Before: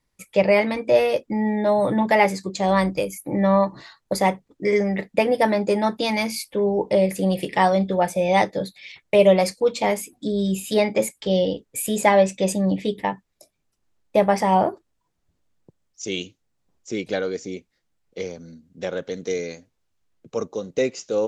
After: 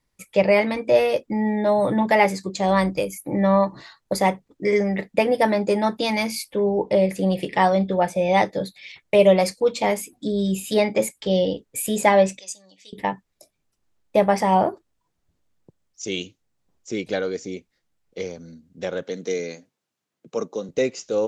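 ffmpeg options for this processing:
-filter_complex "[0:a]asettb=1/sr,asplit=3[s0][s1][s2];[s0]atrim=end=6.624[s3];[s1]atrim=start=6.62:end=8.45,asetpts=PTS-STARTPTS,afade=t=in:d=0.004:c=qsin,afade=t=out:st=1.826:d=0.004:c=qsin,highshelf=f=9300:g=-11.5[s4];[s2]atrim=start=8.446[s5];[s3][s4]acrossfade=d=0.004:c1=hsin:c2=qsin[s6];[s6][s5]acrossfade=d=0.004:c1=qsin:c2=hsin,asettb=1/sr,asplit=3[s7][s8][s9];[s7]atrim=end=12.394[s10];[s8]atrim=start=12.39:end=12.93,asetpts=PTS-STARTPTS,afade=t=in:d=0.004:c=qsin,afade=t=out:st=0.536:d=0.004:c=qsin,bandpass=f=6200:t=q:w=2.2[s11];[s9]atrim=start=12.926[s12];[s10][s11]acrossfade=d=0.004:c1=hsin:c2=qsin[s13];[s13][s12]acrossfade=d=0.004:c1=qsin:c2=hsin,asettb=1/sr,asplit=3[s14][s15][s16];[s14]atrim=end=19.034[s17];[s15]atrim=start=19.03:end=20.69,asetpts=PTS-STARTPTS,afade=t=in:d=0.004:c=qsin,afade=t=out:st=1.656:d=0.004:c=qsin,highpass=f=140:w=0.5412,highpass=f=140:w=1.3066[s18];[s16]atrim=start=20.686[s19];[s17][s18]acrossfade=d=0.004:c1=hsin:c2=qsin[s20];[s20][s19]acrossfade=d=0.004:c1=qsin:c2=hsin"

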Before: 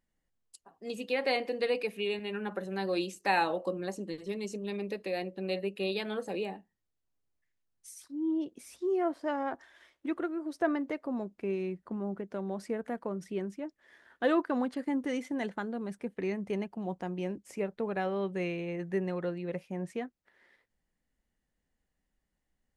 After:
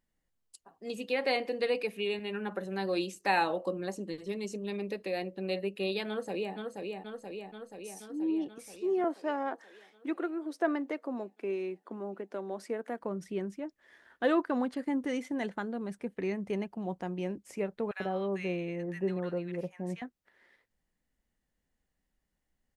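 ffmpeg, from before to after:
-filter_complex "[0:a]asplit=2[s0][s1];[s1]afade=t=in:st=6.08:d=0.01,afade=t=out:st=6.55:d=0.01,aecho=0:1:480|960|1440|1920|2400|2880|3360|3840|4320|4800|5280|5760:0.630957|0.44167|0.309169|0.216418|0.151493|0.106045|0.0742315|0.0519621|0.0363734|0.0254614|0.017823|0.0124761[s2];[s0][s2]amix=inputs=2:normalize=0,asettb=1/sr,asplit=3[s3][s4][s5];[s3]atrim=end=9.044[s6];[s4]atrim=start=9.04:end=13.01,asetpts=PTS-STARTPTS,afade=t=in:d=0.004:c=qsin,afade=t=out:st=3.966:d=0.004:c=qsin,highpass=f=250:w=0.5412,highpass=f=250:w=1.3066[s7];[s5]atrim=start=13.006[s8];[s6][s7]acrossfade=d=0.004:c1=hsin:c2=qsin[s9];[s9][s8]acrossfade=d=0.004:c1=qsin:c2=hsin,asettb=1/sr,asplit=3[s10][s11][s12];[s10]atrim=end=17.914[s13];[s11]atrim=start=17.91:end=20.02,asetpts=PTS-STARTPTS,afade=t=in:d=0.004:c=qsin,afade=t=out:st=2.106:d=0.004:c=qsin,acrossover=split=1200[s14][s15];[s14]adelay=90[s16];[s16][s15]amix=inputs=2:normalize=0,atrim=end_sample=93051[s17];[s12]atrim=start=20.016[s18];[s13][s17]acrossfade=d=0.004:c1=hsin:c2=qsin[s19];[s19][s18]acrossfade=d=0.004:c1=qsin:c2=hsin"

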